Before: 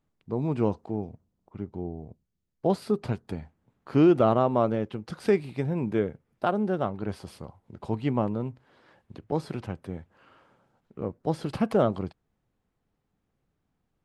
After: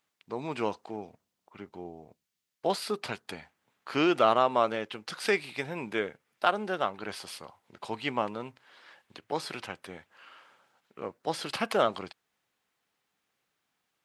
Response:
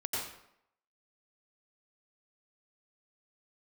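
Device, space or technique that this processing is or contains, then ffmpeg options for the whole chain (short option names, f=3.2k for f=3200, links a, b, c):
filter by subtraction: -filter_complex "[0:a]asplit=2[a][b];[b]lowpass=2.7k,volume=-1[c];[a][c]amix=inputs=2:normalize=0,volume=8dB"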